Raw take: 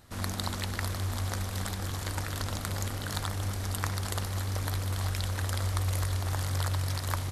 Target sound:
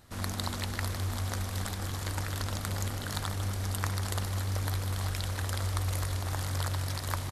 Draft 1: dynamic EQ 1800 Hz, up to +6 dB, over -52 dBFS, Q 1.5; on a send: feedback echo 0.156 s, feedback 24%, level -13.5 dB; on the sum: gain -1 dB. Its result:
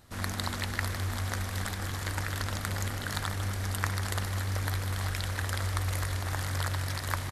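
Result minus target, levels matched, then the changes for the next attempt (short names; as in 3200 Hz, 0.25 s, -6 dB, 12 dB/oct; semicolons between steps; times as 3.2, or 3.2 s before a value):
2000 Hz band +4.5 dB
remove: dynamic EQ 1800 Hz, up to +6 dB, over -52 dBFS, Q 1.5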